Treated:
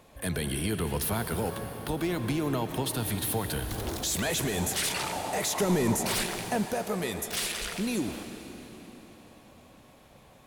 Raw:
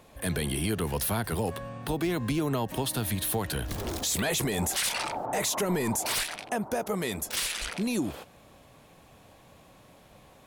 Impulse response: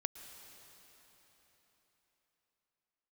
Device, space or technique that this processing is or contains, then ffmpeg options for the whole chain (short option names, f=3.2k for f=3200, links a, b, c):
cathedral: -filter_complex "[1:a]atrim=start_sample=2205[a];[0:a][a]afir=irnorm=-1:irlink=0,asettb=1/sr,asplit=3[b][c][d];[b]atrim=end=5.604[e];[c]atrim=start=5.6:end=6.66,asetpts=PTS-STARTPTS,afade=t=in:d=0.004:c=qsin,afade=t=out:st=1.056:d=0.004:c=qsin,lowshelf=f=500:g=5.5[f];[d]atrim=start=6.656[g];[e][f]acrossfade=d=0.004:c1=hsin:c2=qsin[h];[h][g]acrossfade=d=0.004:c1=qsin:c2=hsin"